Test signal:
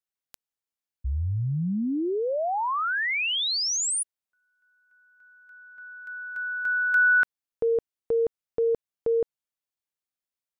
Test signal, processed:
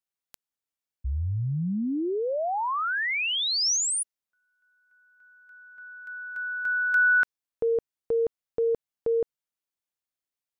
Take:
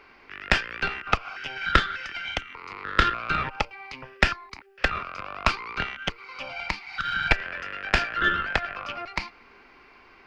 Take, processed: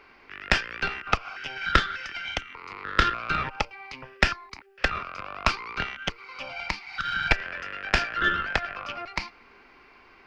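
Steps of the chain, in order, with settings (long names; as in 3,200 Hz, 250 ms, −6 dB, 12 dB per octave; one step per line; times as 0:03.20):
dynamic equaliser 5,600 Hz, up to +4 dB, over −49 dBFS, Q 2.6
level −1 dB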